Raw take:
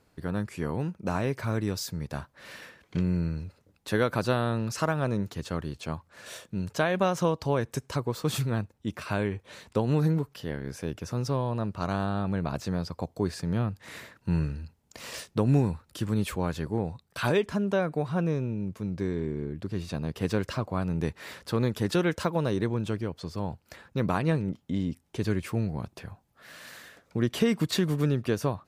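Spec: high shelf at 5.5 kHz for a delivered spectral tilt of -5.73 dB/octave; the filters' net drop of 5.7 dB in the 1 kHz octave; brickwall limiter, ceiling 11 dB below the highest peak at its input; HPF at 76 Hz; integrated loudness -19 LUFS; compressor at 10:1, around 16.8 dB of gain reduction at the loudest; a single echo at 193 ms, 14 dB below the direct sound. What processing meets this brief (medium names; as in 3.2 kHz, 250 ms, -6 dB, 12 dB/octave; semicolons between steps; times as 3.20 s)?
high-pass 76 Hz; peaking EQ 1 kHz -7.5 dB; treble shelf 5.5 kHz -8 dB; compression 10:1, threshold -37 dBFS; peak limiter -34.5 dBFS; delay 193 ms -14 dB; trim +26.5 dB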